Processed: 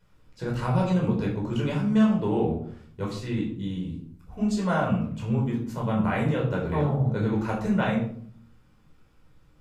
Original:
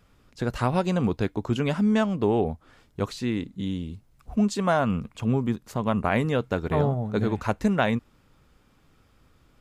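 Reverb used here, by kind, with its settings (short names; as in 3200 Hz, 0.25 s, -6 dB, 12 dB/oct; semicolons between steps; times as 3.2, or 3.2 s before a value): shoebox room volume 720 m³, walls furnished, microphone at 4.8 m; gain -9.5 dB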